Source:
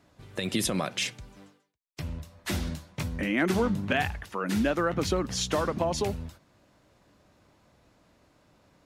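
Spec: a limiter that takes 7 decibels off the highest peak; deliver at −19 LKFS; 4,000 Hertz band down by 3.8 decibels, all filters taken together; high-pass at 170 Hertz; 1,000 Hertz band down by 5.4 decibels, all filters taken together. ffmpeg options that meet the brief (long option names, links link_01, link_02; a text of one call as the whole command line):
ffmpeg -i in.wav -af "highpass=170,equalizer=frequency=1000:width_type=o:gain=-7.5,equalizer=frequency=4000:width_type=o:gain=-4.5,volume=15dB,alimiter=limit=-7.5dB:level=0:latency=1" out.wav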